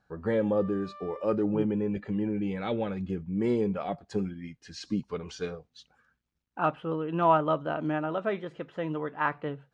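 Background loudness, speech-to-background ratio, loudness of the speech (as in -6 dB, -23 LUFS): -48.5 LUFS, 18.5 dB, -30.0 LUFS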